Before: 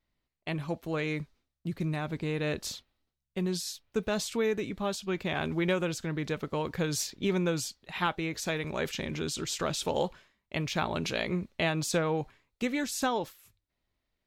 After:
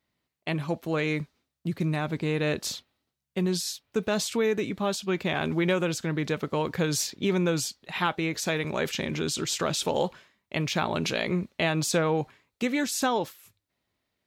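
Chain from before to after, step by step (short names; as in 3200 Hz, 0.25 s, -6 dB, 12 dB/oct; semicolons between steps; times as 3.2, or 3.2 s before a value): HPF 100 Hz 12 dB/oct; in parallel at -2.5 dB: limiter -23 dBFS, peak gain reduction 7.5 dB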